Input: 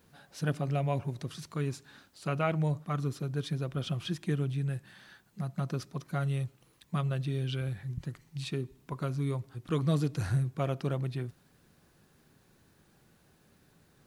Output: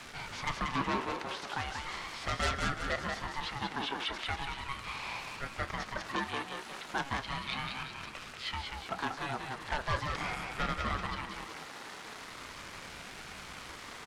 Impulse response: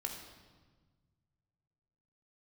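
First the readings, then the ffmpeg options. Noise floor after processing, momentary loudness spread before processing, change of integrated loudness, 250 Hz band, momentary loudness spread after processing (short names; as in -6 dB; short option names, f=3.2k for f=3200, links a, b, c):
-47 dBFS, 10 LU, -3.0 dB, -7.0 dB, 11 LU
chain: -filter_complex "[0:a]aeval=exprs='val(0)+0.5*0.0075*sgn(val(0))':c=same,lowpass=7k,acrossover=split=3400[a][b];[b]acompressor=threshold=-58dB:ratio=4:attack=1:release=60[c];[a][c]amix=inputs=2:normalize=0,aeval=exprs='0.168*(cos(1*acos(clip(val(0)/0.168,-1,1)))-cos(1*PI/2))+0.00531*(cos(7*acos(clip(val(0)/0.168,-1,1)))-cos(7*PI/2))':c=same,highpass=f=550:w=0.5412,highpass=f=550:w=1.3066,asplit=2[d][e];[e]aeval=exprs='0.126*sin(PI/2*5.62*val(0)/0.126)':c=same,volume=-7dB[f];[d][f]amix=inputs=2:normalize=0,asplit=2[g][h];[h]adelay=27,volume=-13dB[i];[g][i]amix=inputs=2:normalize=0,asplit=2[j][k];[k]asplit=6[l][m][n][o][p][q];[l]adelay=185,afreqshift=48,volume=-4.5dB[r];[m]adelay=370,afreqshift=96,volume=-10.7dB[s];[n]adelay=555,afreqshift=144,volume=-16.9dB[t];[o]adelay=740,afreqshift=192,volume=-23.1dB[u];[p]adelay=925,afreqshift=240,volume=-29.3dB[v];[q]adelay=1110,afreqshift=288,volume=-35.5dB[w];[r][s][t][u][v][w]amix=inputs=6:normalize=0[x];[j][x]amix=inputs=2:normalize=0,aeval=exprs='val(0)*sin(2*PI*500*n/s+500*0.45/0.38*sin(2*PI*0.38*n/s))':c=same,volume=-2.5dB"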